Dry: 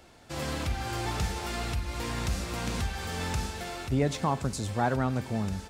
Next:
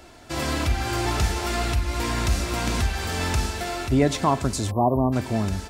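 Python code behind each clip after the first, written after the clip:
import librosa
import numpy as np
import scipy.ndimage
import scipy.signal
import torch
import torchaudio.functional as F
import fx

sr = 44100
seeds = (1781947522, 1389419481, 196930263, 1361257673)

y = fx.spec_erase(x, sr, start_s=4.71, length_s=0.41, low_hz=1200.0, high_hz=11000.0)
y = y + 0.37 * np.pad(y, (int(3.0 * sr / 1000.0), 0))[:len(y)]
y = y * librosa.db_to_amplitude(7.0)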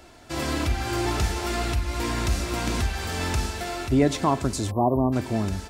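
y = fx.dynamic_eq(x, sr, hz=330.0, q=2.2, threshold_db=-34.0, ratio=4.0, max_db=4)
y = y * librosa.db_to_amplitude(-2.0)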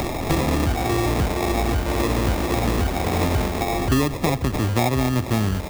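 y = fx.sample_hold(x, sr, seeds[0], rate_hz=1500.0, jitter_pct=0)
y = fx.band_squash(y, sr, depth_pct=100)
y = y * librosa.db_to_amplitude(3.0)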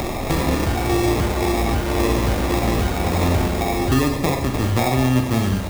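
y = fx.rev_schroeder(x, sr, rt60_s=0.81, comb_ms=31, drr_db=3.0)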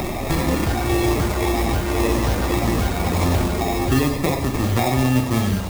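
y = fx.spec_quant(x, sr, step_db=15)
y = fx.mod_noise(y, sr, seeds[1], snr_db=21)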